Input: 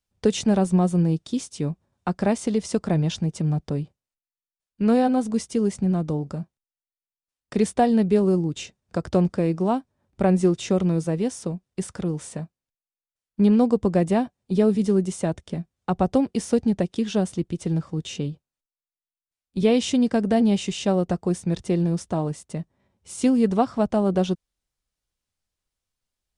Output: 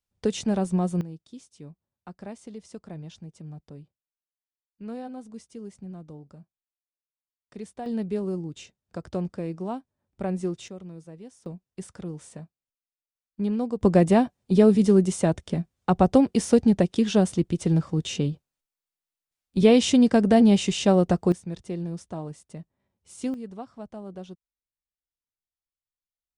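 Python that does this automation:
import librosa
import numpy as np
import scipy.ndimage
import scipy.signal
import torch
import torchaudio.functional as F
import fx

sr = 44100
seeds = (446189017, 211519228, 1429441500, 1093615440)

y = fx.gain(x, sr, db=fx.steps((0.0, -5.0), (1.01, -17.5), (7.86, -9.5), (10.68, -19.5), (11.46, -9.0), (13.81, 2.5), (21.32, -9.5), (23.34, -18.0)))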